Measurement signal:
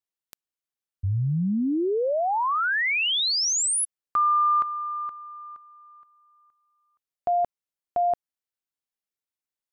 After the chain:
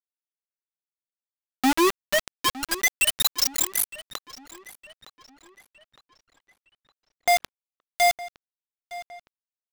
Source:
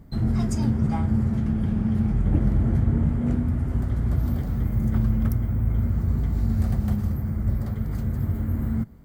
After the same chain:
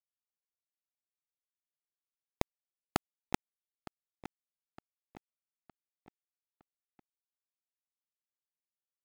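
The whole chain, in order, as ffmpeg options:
-filter_complex "[0:a]afwtdn=0.0316,highpass=f=170:w=0.5412,highpass=f=170:w=1.3066,aeval=exprs='0.211*(cos(1*acos(clip(val(0)/0.211,-1,1)))-cos(1*PI/2))+0.00422*(cos(6*acos(clip(val(0)/0.211,-1,1)))-cos(6*PI/2))+0.00422*(cos(8*acos(clip(val(0)/0.211,-1,1)))-cos(8*PI/2))':c=same,alimiter=limit=0.0794:level=0:latency=1:release=63,aecho=1:1:3:0.42,acrossover=split=440[s0][s1];[s0]aeval=exprs='val(0)*(1-0.5/2+0.5/2*cos(2*PI*5.4*n/s))':c=same[s2];[s1]aeval=exprs='val(0)*(1-0.5/2-0.5/2*cos(2*PI*5.4*n/s))':c=same[s3];[s2][s3]amix=inputs=2:normalize=0,acrusher=bits=3:mix=0:aa=0.000001,asplit=2[s4][s5];[s5]adelay=912,lowpass=f=4200:p=1,volume=0.15,asplit=2[s6][s7];[s7]adelay=912,lowpass=f=4200:p=1,volume=0.48,asplit=2[s8][s9];[s9]adelay=912,lowpass=f=4200:p=1,volume=0.48,asplit=2[s10][s11];[s11]adelay=912,lowpass=f=4200:p=1,volume=0.48[s12];[s6][s8][s10][s12]amix=inputs=4:normalize=0[s13];[s4][s13]amix=inputs=2:normalize=0,volume=1.5"

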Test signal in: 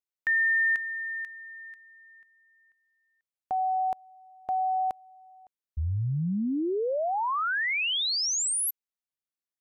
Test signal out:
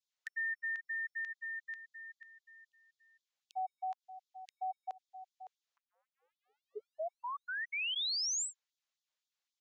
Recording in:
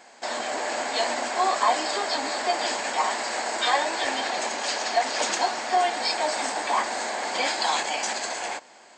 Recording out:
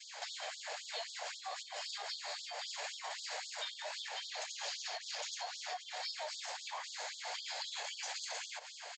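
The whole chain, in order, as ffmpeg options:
-af "equalizer=f=3600:w=1.9:g=3,aresample=16000,aresample=44100,acompressor=threshold=0.0126:ratio=16:attack=0.42:release=122:knee=1:detection=rms,adynamicequalizer=threshold=0.00178:dfrequency=1200:dqfactor=0.91:tfrequency=1200:tqfactor=0.91:attack=5:release=100:ratio=0.375:range=2.5:mode=cutabove:tftype=bell,afftfilt=real='re*gte(b*sr/1024,410*pow(3300/410,0.5+0.5*sin(2*PI*3.8*pts/sr)))':imag='im*gte(b*sr/1024,410*pow(3300/410,0.5+0.5*sin(2*PI*3.8*pts/sr)))':win_size=1024:overlap=0.75,volume=1.88"

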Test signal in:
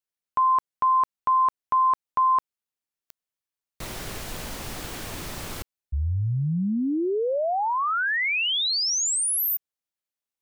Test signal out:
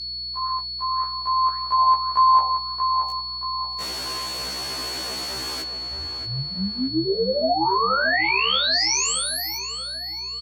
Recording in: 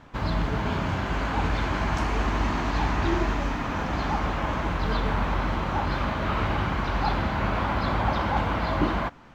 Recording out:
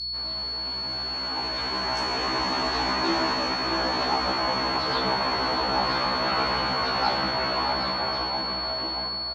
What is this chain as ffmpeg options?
-filter_complex "[0:a]aemphasis=mode=reproduction:type=50fm,flanger=delay=2.5:depth=5.9:regen=-71:speed=0.73:shape=sinusoidal,dynaudnorm=f=160:g=21:m=5.01,flanger=delay=3.8:depth=8.7:regen=-83:speed=1.8:shape=sinusoidal,highpass=93,asplit=2[s0][s1];[s1]adelay=628,lowpass=f=2400:p=1,volume=0.501,asplit=2[s2][s3];[s3]adelay=628,lowpass=f=2400:p=1,volume=0.47,asplit=2[s4][s5];[s5]adelay=628,lowpass=f=2400:p=1,volume=0.47,asplit=2[s6][s7];[s7]adelay=628,lowpass=f=2400:p=1,volume=0.47,asplit=2[s8][s9];[s9]adelay=628,lowpass=f=2400:p=1,volume=0.47,asplit=2[s10][s11];[s11]adelay=628,lowpass=f=2400:p=1,volume=0.47[s12];[s2][s4][s6][s8][s10][s12]amix=inputs=6:normalize=0[s13];[s0][s13]amix=inputs=2:normalize=0,aeval=exprs='val(0)+0.0158*sin(2*PI*4400*n/s)':c=same,bass=f=250:g=-11,treble=f=4000:g=11,aeval=exprs='val(0)+0.00447*(sin(2*PI*60*n/s)+sin(2*PI*2*60*n/s)/2+sin(2*PI*3*60*n/s)/3+sin(2*PI*4*60*n/s)/4+sin(2*PI*5*60*n/s)/5)':c=same,afftfilt=real='re*1.73*eq(mod(b,3),0)':imag='im*1.73*eq(mod(b,3),0)':win_size=2048:overlap=0.75"

